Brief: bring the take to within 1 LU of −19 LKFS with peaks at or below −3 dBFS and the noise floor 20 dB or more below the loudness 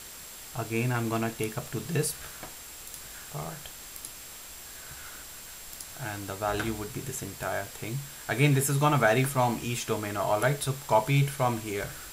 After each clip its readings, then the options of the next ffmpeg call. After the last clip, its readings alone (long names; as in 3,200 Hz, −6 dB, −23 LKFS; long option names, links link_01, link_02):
interfering tone 7,600 Hz; level of the tone −50 dBFS; background noise floor −45 dBFS; target noise floor −49 dBFS; integrated loudness −29.0 LKFS; sample peak −9.0 dBFS; target loudness −19.0 LKFS
→ -af "bandreject=frequency=7600:width=30"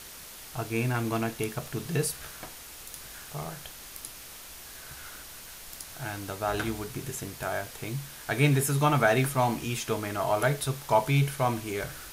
interfering tone none found; background noise floor −45 dBFS; target noise floor −49 dBFS
→ -af "afftdn=noise_reduction=6:noise_floor=-45"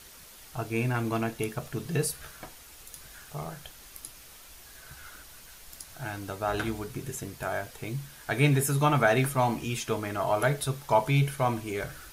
background noise floor −50 dBFS; integrated loudness −29.0 LKFS; sample peak −9.0 dBFS; target loudness −19.0 LKFS
→ -af "volume=10dB,alimiter=limit=-3dB:level=0:latency=1"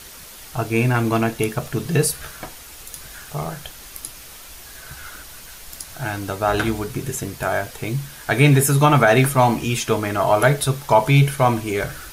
integrated loudness −19.5 LKFS; sample peak −3.0 dBFS; background noise floor −40 dBFS